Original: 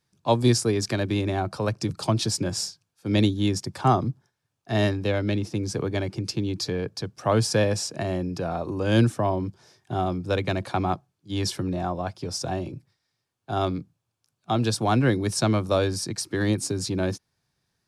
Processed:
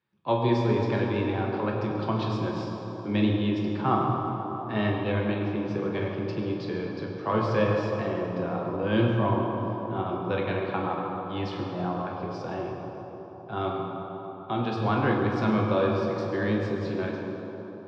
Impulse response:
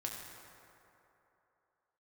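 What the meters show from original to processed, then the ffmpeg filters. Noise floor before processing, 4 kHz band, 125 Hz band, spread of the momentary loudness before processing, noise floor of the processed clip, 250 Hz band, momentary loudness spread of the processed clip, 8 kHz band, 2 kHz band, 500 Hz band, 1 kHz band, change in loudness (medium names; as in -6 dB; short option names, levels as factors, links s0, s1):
-80 dBFS, -9.5 dB, -3.5 dB, 9 LU, -40 dBFS, -1.0 dB, 10 LU, under -25 dB, -1.0 dB, -1.0 dB, -0.5 dB, -2.5 dB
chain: -filter_complex "[0:a]highpass=130,equalizer=f=250:t=q:w=4:g=-4,equalizer=f=680:t=q:w=4:g=-6,equalizer=f=1000:t=q:w=4:g=3,lowpass=f=3200:w=0.5412,lowpass=f=3200:w=1.3066[s0];[1:a]atrim=start_sample=2205,asetrate=29106,aresample=44100[s1];[s0][s1]afir=irnorm=-1:irlink=0,volume=0.708"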